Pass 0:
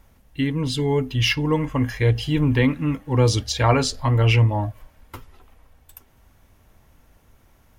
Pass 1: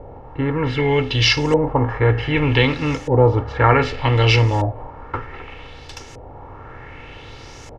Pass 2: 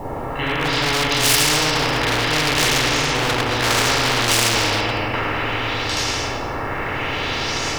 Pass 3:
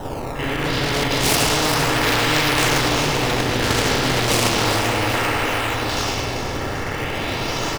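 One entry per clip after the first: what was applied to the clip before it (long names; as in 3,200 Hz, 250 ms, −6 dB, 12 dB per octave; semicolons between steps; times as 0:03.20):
compressor on every frequency bin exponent 0.6; comb filter 2.3 ms, depth 45%; auto-filter low-pass saw up 0.65 Hz 600–7,300 Hz; level −1 dB
convolution reverb RT60 1.8 s, pre-delay 13 ms, DRR −9 dB; bit-depth reduction 10 bits, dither none; every bin compressed towards the loudest bin 4 to 1; level −1 dB
repeating echo 392 ms, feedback 55%, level −8 dB; in parallel at −3 dB: sample-and-hold swept by an LFO 19×, swing 160% 0.33 Hz; on the sum: level −4 dB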